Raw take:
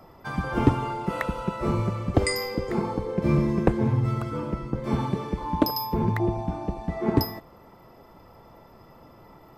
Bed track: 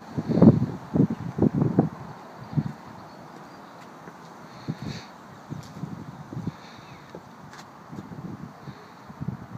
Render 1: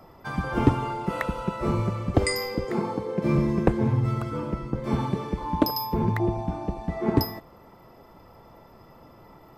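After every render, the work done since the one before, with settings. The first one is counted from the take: 2.65–3.36 s: high-pass 130 Hz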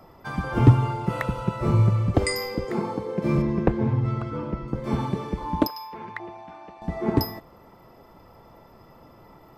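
0.56–2.13 s: peaking EQ 120 Hz +14 dB 0.43 oct; 3.42–4.68 s: distance through air 120 m; 5.67–6.82 s: band-pass filter 2 kHz, Q 0.97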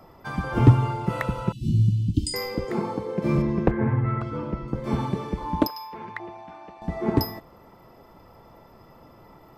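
1.52–2.34 s: Chebyshev band-stop 310–2900 Hz, order 5; 3.71–4.21 s: resonant low-pass 1.8 kHz, resonance Q 3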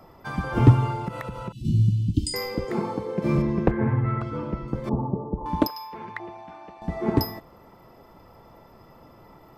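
1.08–1.65 s: compression 3:1, threshold -31 dBFS; 4.89–5.46 s: steep low-pass 1 kHz 48 dB/octave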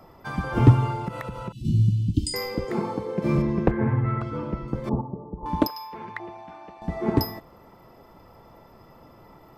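5.01–5.43 s: feedback comb 59 Hz, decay 2 s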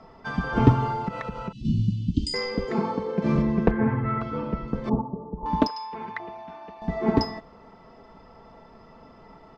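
low-pass 6.2 kHz 24 dB/octave; comb 4.5 ms, depth 49%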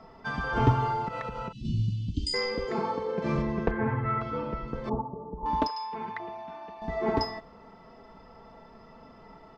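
dynamic bell 200 Hz, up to -8 dB, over -37 dBFS, Q 1.3; harmonic-percussive split percussive -5 dB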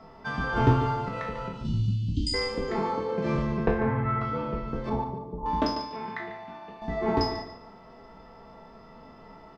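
spectral sustain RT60 0.49 s; feedback delay 145 ms, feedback 27%, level -11 dB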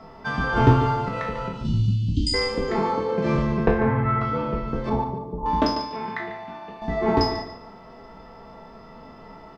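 trim +5 dB

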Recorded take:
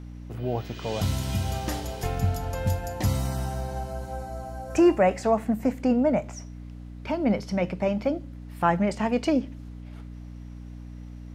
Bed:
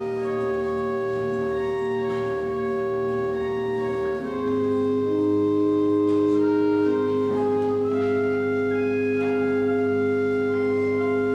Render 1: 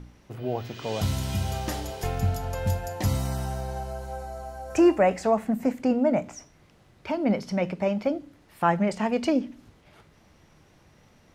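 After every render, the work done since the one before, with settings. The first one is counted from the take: de-hum 60 Hz, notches 5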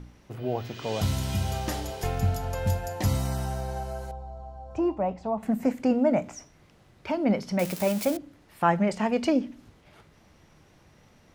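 4.11–5.43 s: FFT filter 120 Hz 0 dB, 460 Hz -10 dB, 980 Hz -3 dB, 1.7 kHz -21 dB, 3.5 kHz -11 dB, 10 kHz -28 dB; 7.59–8.17 s: zero-crossing glitches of -23 dBFS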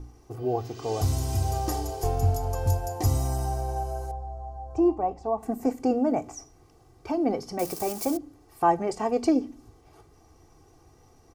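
high-order bell 2.4 kHz -10.5 dB; comb 2.6 ms, depth 76%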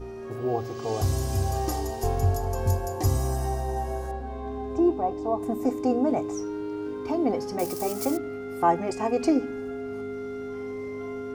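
add bed -12 dB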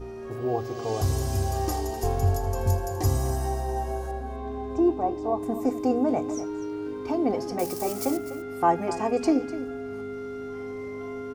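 delay 249 ms -14 dB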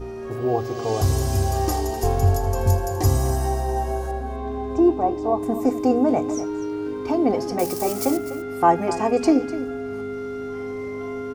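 trim +5 dB

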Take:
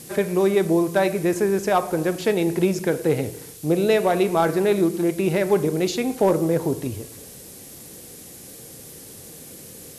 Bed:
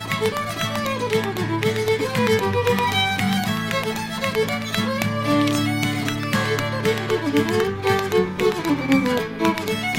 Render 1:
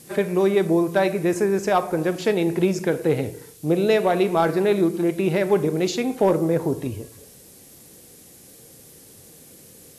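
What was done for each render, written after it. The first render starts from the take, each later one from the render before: noise print and reduce 6 dB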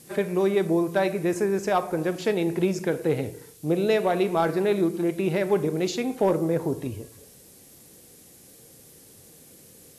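trim -3.5 dB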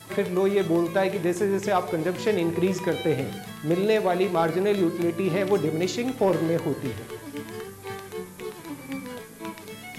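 add bed -16.5 dB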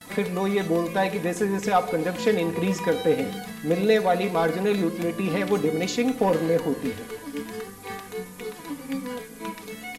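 gate with hold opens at -38 dBFS; comb 4.1 ms, depth 71%

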